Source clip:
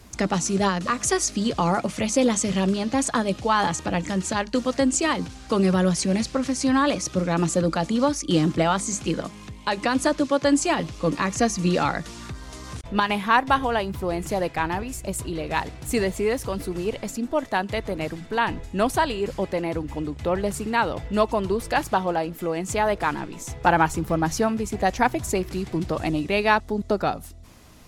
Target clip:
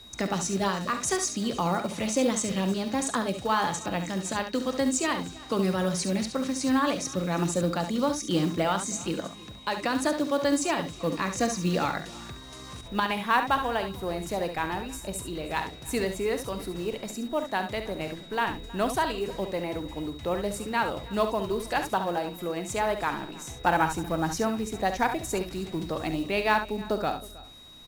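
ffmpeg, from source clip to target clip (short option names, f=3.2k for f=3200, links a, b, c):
-filter_complex "[0:a]asplit=2[a][b];[b]aecho=0:1:46|69:0.188|0.355[c];[a][c]amix=inputs=2:normalize=0,acrusher=bits=7:mode=log:mix=0:aa=0.000001,equalizer=f=75:t=o:w=2.1:g=-4,aeval=exprs='val(0)+0.00794*sin(2*PI*3800*n/s)':c=same,asplit=2[d][e];[e]aecho=0:1:317:0.0891[f];[d][f]amix=inputs=2:normalize=0,volume=-5dB"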